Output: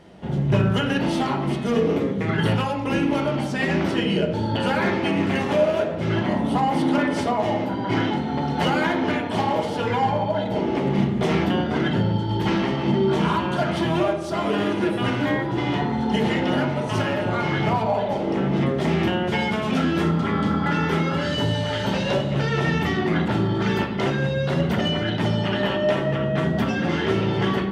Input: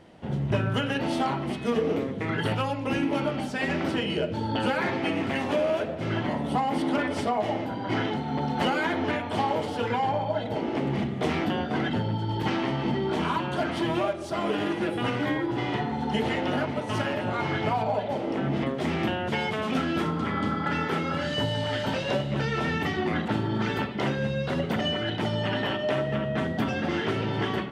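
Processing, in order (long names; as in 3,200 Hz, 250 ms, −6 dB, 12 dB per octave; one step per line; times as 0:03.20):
hum removal 68.81 Hz, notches 40
hard clipping −18 dBFS, distortion −31 dB
on a send: convolution reverb RT60 0.80 s, pre-delay 3 ms, DRR 6 dB
on the sum: level +3.5 dB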